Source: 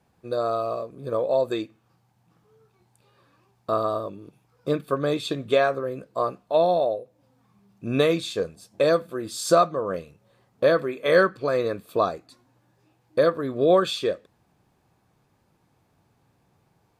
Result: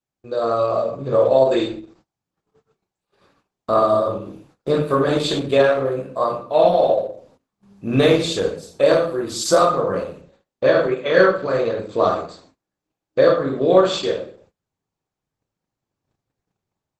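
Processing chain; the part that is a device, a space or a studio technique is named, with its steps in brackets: speakerphone in a meeting room (reverberation RT60 0.50 s, pre-delay 15 ms, DRR -2 dB; level rider gain up to 5 dB; gate -51 dBFS, range -27 dB; Opus 12 kbps 48 kHz)

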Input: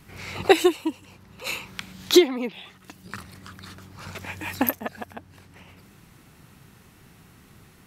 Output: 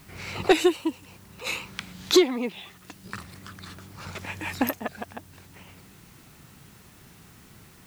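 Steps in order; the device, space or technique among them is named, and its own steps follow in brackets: compact cassette (saturation -9 dBFS, distortion -15 dB; low-pass 11 kHz; wow and flutter; white noise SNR 28 dB)

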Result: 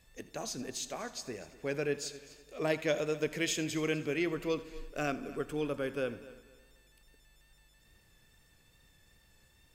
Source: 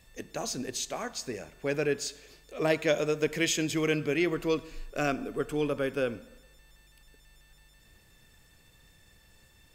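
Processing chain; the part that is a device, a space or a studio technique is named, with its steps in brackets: multi-head tape echo (multi-head delay 83 ms, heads first and third, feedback 44%, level -18.5 dB; wow and flutter 21 cents); trim -5 dB

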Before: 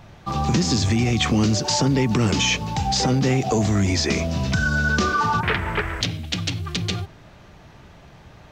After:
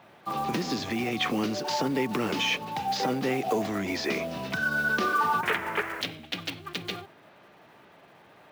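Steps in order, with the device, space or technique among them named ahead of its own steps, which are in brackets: early digital voice recorder (band-pass 300–3400 Hz; block-companded coder 5-bit); trim -3.5 dB

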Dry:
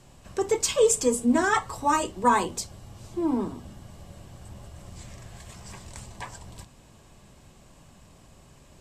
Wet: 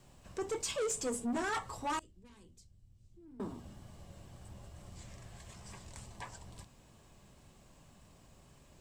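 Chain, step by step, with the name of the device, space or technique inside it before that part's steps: compact cassette (saturation -23.5 dBFS, distortion -8 dB; low-pass 12 kHz 12 dB/octave; wow and flutter 27 cents; white noise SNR 39 dB); 1.99–3.40 s: amplifier tone stack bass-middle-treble 10-0-1; trim -7.5 dB

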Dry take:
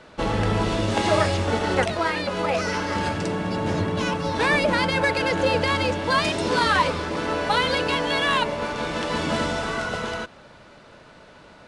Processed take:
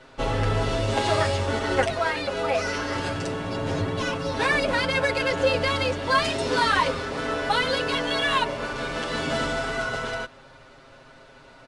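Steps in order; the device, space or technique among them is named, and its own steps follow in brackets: low shelf boost with a cut just above (bass shelf 86 Hz +7 dB; peaking EQ 160 Hz -5 dB 1.2 oct); comb 7.5 ms, depth 95%; trim -4 dB

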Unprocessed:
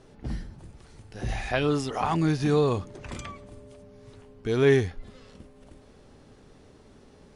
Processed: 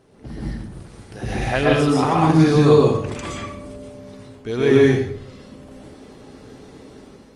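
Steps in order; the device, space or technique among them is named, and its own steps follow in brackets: far-field microphone of a smart speaker (reverberation RT60 0.65 s, pre-delay 113 ms, DRR -3 dB; high-pass 92 Hz 6 dB/octave; level rider gain up to 6.5 dB; Opus 32 kbps 48 kHz)

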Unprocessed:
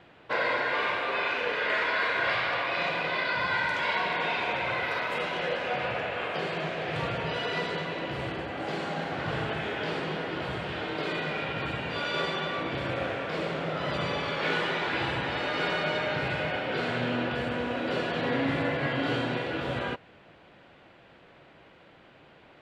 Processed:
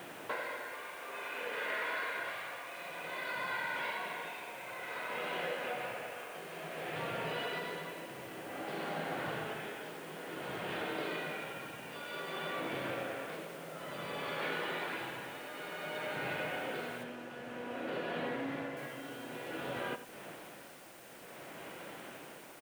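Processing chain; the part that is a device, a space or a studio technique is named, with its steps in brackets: medium wave at night (band-pass 180–4000 Hz; compression 5:1, threshold -45 dBFS, peak gain reduction 18.5 dB; tremolo 0.55 Hz, depth 63%; whistle 9 kHz -77 dBFS; white noise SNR 18 dB); 17.03–18.77 s: treble shelf 6.7 kHz -12 dB; echo from a far wall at 15 m, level -11 dB; trim +8 dB

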